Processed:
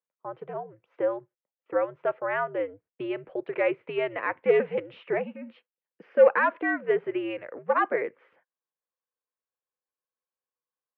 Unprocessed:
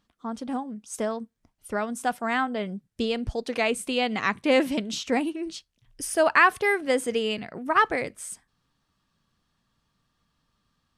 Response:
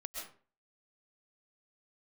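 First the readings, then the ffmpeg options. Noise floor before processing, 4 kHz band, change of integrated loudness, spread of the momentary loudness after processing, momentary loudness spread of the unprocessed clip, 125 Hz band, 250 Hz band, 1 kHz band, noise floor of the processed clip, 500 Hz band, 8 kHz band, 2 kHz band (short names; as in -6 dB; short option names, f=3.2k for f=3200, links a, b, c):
-75 dBFS, under -15 dB, -1.5 dB, 15 LU, 15 LU, -6.0 dB, -7.0 dB, -4.5 dB, under -85 dBFS, +2.0 dB, under -40 dB, -5.0 dB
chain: -af "agate=range=-21dB:threshold=-47dB:ratio=16:detection=peak,asoftclip=type=hard:threshold=-16dB,highpass=f=400:t=q:w=0.5412,highpass=f=400:t=q:w=1.307,lowpass=f=2.5k:t=q:w=0.5176,lowpass=f=2.5k:t=q:w=0.7071,lowpass=f=2.5k:t=q:w=1.932,afreqshift=-97,equalizer=f=500:t=o:w=0.3:g=13,volume=-2.5dB"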